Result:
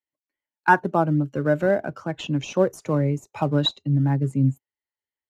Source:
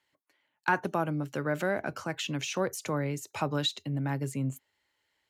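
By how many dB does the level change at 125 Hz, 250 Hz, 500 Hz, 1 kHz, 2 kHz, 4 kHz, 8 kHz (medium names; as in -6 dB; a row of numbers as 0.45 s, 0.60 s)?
+11.0 dB, +10.0 dB, +9.5 dB, +9.0 dB, +6.0 dB, +5.0 dB, -4.0 dB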